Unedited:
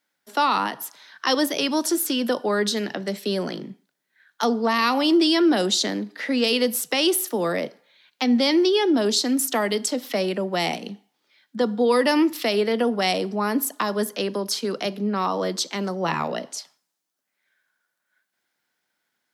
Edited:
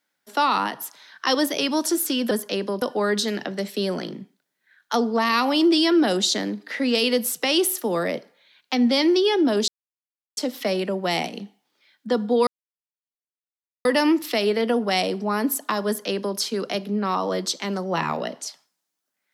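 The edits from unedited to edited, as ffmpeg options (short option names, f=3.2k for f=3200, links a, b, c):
-filter_complex "[0:a]asplit=6[a][b][c][d][e][f];[a]atrim=end=2.312[g];[b]atrim=start=13.978:end=14.492[h];[c]atrim=start=2.308:end=9.17,asetpts=PTS-STARTPTS,afade=t=out:st=6.858:d=0.004:c=hsin[i];[d]atrim=start=9.17:end=9.86,asetpts=PTS-STARTPTS,volume=0[j];[e]atrim=start=9.86:end=11.96,asetpts=PTS-STARTPTS,afade=t=in:d=0.004:c=hsin,afade=t=out:st=2.096:d=0.004:c=hsin,apad=pad_dur=1.38[k];[f]atrim=start=11.96,asetpts=PTS-STARTPTS,afade=t=in:d=0.004:c=hsin[l];[g][h]acrossfade=d=0.004:c1=hsin:c2=hsin[m];[i][j][k][l]concat=n=4:v=0:a=1[n];[m][n]acrossfade=d=0.004:c1=hsin:c2=hsin"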